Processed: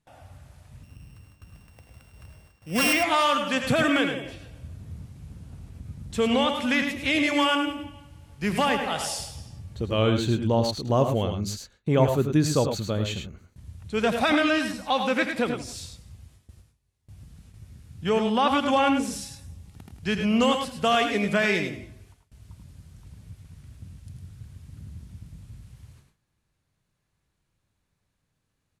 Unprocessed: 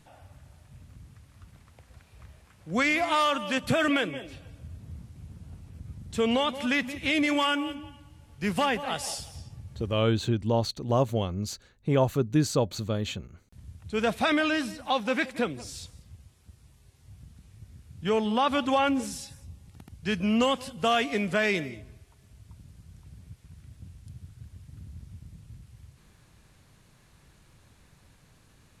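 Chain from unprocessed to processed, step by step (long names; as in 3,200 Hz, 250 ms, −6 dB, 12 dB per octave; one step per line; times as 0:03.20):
0:00.83–0:02.93: samples sorted by size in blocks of 16 samples
noise gate with hold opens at −45 dBFS
multi-tap delay 83/104 ms −10.5/−7.5 dB
level +2 dB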